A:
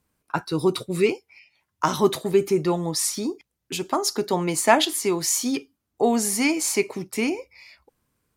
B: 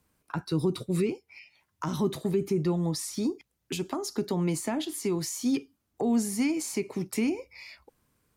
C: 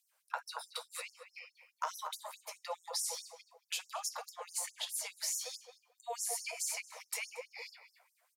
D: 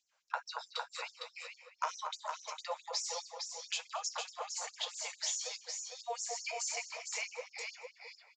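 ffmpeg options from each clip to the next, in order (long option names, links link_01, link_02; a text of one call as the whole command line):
ffmpeg -i in.wav -filter_complex "[0:a]asplit=2[link_01][link_02];[link_02]alimiter=limit=-16dB:level=0:latency=1,volume=-1dB[link_03];[link_01][link_03]amix=inputs=2:normalize=0,acrossover=split=290[link_04][link_05];[link_05]acompressor=threshold=-30dB:ratio=6[link_06];[link_04][link_06]amix=inputs=2:normalize=0,volume=-4dB" out.wav
ffmpeg -i in.wav -filter_complex "[0:a]asplit=2[link_01][link_02];[link_02]adelay=229,lowpass=frequency=830:poles=1,volume=-3dB,asplit=2[link_03][link_04];[link_04]adelay=229,lowpass=frequency=830:poles=1,volume=0.46,asplit=2[link_05][link_06];[link_06]adelay=229,lowpass=frequency=830:poles=1,volume=0.46,asplit=2[link_07][link_08];[link_08]adelay=229,lowpass=frequency=830:poles=1,volume=0.46,asplit=2[link_09][link_10];[link_10]adelay=229,lowpass=frequency=830:poles=1,volume=0.46,asplit=2[link_11][link_12];[link_12]adelay=229,lowpass=frequency=830:poles=1,volume=0.46[link_13];[link_01][link_03][link_05][link_07][link_09][link_11][link_13]amix=inputs=7:normalize=0,flanger=delay=5.2:depth=4.8:regen=-62:speed=0.71:shape=triangular,afftfilt=real='re*gte(b*sr/1024,450*pow(5300/450,0.5+0.5*sin(2*PI*4.7*pts/sr)))':imag='im*gte(b*sr/1024,450*pow(5300/450,0.5+0.5*sin(2*PI*4.7*pts/sr)))':win_size=1024:overlap=0.75,volume=3.5dB" out.wav
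ffmpeg -i in.wav -af "aecho=1:1:457:0.531,aresample=16000,aresample=44100,volume=1.5dB" out.wav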